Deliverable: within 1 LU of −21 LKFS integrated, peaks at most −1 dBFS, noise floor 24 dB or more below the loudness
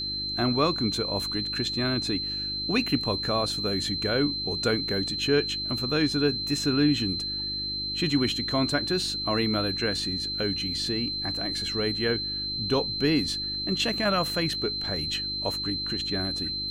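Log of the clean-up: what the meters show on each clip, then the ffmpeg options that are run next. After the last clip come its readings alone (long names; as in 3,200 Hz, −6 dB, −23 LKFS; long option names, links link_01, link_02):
mains hum 50 Hz; hum harmonics up to 350 Hz; level of the hum −39 dBFS; interfering tone 4,100 Hz; level of the tone −29 dBFS; integrated loudness −26.0 LKFS; sample peak −10.5 dBFS; target loudness −21.0 LKFS
→ -af "bandreject=frequency=50:width_type=h:width=4,bandreject=frequency=100:width_type=h:width=4,bandreject=frequency=150:width_type=h:width=4,bandreject=frequency=200:width_type=h:width=4,bandreject=frequency=250:width_type=h:width=4,bandreject=frequency=300:width_type=h:width=4,bandreject=frequency=350:width_type=h:width=4"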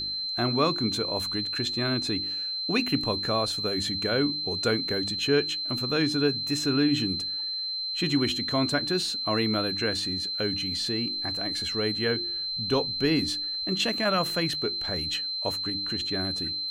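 mains hum none found; interfering tone 4,100 Hz; level of the tone −29 dBFS
→ -af "bandreject=frequency=4100:width=30"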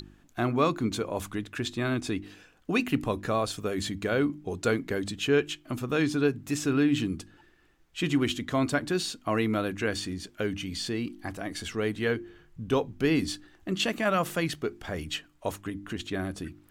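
interfering tone none found; integrated loudness −29.5 LKFS; sample peak −11.5 dBFS; target loudness −21.0 LKFS
→ -af "volume=8.5dB"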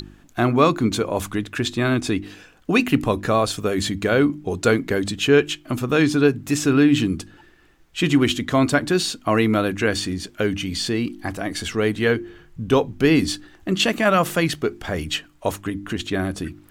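integrated loudness −21.0 LKFS; sample peak −3.0 dBFS; background noise floor −52 dBFS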